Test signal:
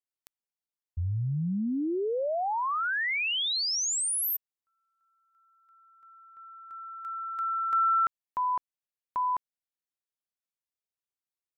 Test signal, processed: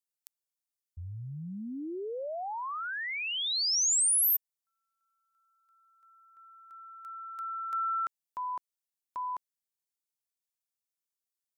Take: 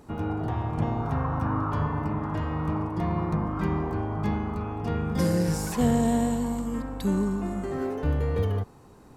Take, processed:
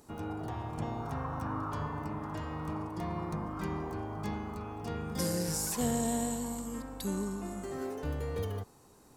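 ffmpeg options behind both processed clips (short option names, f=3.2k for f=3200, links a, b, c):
-af "bass=f=250:g=-4,treble=f=4k:g=11,volume=-7dB"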